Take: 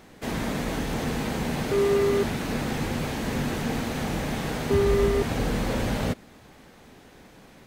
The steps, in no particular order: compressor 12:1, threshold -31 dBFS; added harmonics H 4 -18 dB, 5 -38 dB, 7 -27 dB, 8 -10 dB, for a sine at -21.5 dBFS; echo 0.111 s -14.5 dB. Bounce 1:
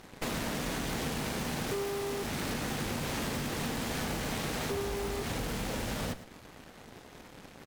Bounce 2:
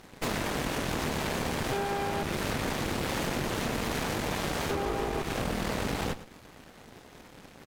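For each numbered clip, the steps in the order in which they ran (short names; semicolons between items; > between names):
added harmonics > compressor > echo; compressor > added harmonics > echo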